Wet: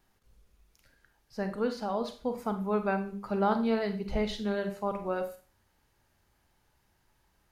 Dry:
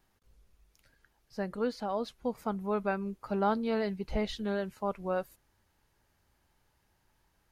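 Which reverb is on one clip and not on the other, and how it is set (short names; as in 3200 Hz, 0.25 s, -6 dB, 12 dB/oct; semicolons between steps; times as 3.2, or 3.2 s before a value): Schroeder reverb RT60 0.38 s, combs from 31 ms, DRR 7 dB; gain +1 dB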